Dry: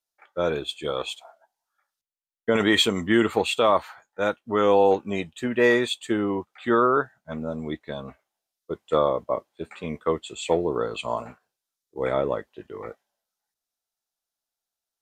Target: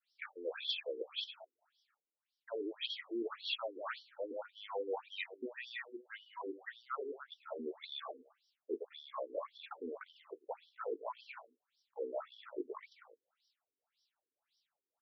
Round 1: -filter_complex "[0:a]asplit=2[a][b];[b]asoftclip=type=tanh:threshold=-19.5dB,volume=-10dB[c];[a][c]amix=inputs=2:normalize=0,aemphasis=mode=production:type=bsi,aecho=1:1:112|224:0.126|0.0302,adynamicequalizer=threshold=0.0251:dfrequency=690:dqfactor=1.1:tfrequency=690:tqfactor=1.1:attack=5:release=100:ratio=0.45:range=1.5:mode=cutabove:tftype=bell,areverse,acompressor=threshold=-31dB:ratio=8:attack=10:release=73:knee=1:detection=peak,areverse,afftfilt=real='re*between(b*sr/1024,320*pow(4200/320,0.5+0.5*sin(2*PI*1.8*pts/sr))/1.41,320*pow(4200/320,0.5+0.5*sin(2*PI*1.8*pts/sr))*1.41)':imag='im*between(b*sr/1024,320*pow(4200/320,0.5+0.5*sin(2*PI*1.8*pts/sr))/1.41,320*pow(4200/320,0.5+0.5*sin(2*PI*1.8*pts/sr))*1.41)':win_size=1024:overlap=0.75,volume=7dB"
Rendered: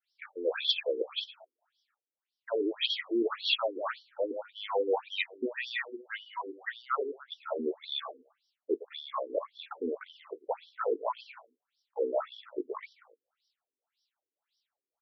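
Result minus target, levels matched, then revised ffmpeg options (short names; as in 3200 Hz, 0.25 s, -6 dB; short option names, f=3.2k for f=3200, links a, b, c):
compressor: peak gain reduction -9.5 dB; soft clip: distortion -5 dB
-filter_complex "[0:a]asplit=2[a][b];[b]asoftclip=type=tanh:threshold=-27.5dB,volume=-10dB[c];[a][c]amix=inputs=2:normalize=0,aemphasis=mode=production:type=bsi,aecho=1:1:112|224:0.126|0.0302,adynamicequalizer=threshold=0.0251:dfrequency=690:dqfactor=1.1:tfrequency=690:tqfactor=1.1:attack=5:release=100:ratio=0.45:range=1.5:mode=cutabove:tftype=bell,areverse,acompressor=threshold=-42.5dB:ratio=8:attack=10:release=73:knee=1:detection=peak,areverse,afftfilt=real='re*between(b*sr/1024,320*pow(4200/320,0.5+0.5*sin(2*PI*1.8*pts/sr))/1.41,320*pow(4200/320,0.5+0.5*sin(2*PI*1.8*pts/sr))*1.41)':imag='im*between(b*sr/1024,320*pow(4200/320,0.5+0.5*sin(2*PI*1.8*pts/sr))/1.41,320*pow(4200/320,0.5+0.5*sin(2*PI*1.8*pts/sr))*1.41)':win_size=1024:overlap=0.75,volume=7dB"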